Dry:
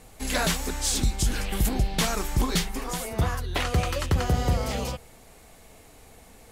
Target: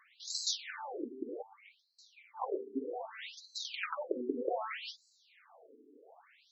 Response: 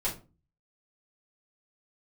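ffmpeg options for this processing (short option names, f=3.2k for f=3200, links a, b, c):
-filter_complex "[0:a]adynamicsmooth=sensitivity=4:basefreq=5.1k,asettb=1/sr,asplit=3[a][b][c];[a]atrim=end=1.424[d];[b]atrim=start=1.42:end=2.37,asetpts=PTS-STARTPTS,afade=t=in:d=0.004:c=qsin,afade=t=out:st=0.946:d=0.004:c=qsin,asplit=3[e][f][g];[e]bandpass=f=300:t=q:w=8,volume=0dB[h];[f]bandpass=f=870:t=q:w=8,volume=-6dB[i];[g]bandpass=f=2.24k:t=q:w=8,volume=-9dB[j];[h][i][j]amix=inputs=3:normalize=0[k];[c]atrim=start=2.366[l];[d][k]acrossfade=d=0.004:c1=hsin:c2=qsin[m];[m][l]acrossfade=d=0.004:c1=qsin:c2=hsin,afftfilt=real='re*between(b*sr/1024,310*pow(5700/310,0.5+0.5*sin(2*PI*0.64*pts/sr))/1.41,310*pow(5700/310,0.5+0.5*sin(2*PI*0.64*pts/sr))*1.41)':imag='im*between(b*sr/1024,310*pow(5700/310,0.5+0.5*sin(2*PI*0.64*pts/sr))/1.41,310*pow(5700/310,0.5+0.5*sin(2*PI*0.64*pts/sr))*1.41)':win_size=1024:overlap=0.75"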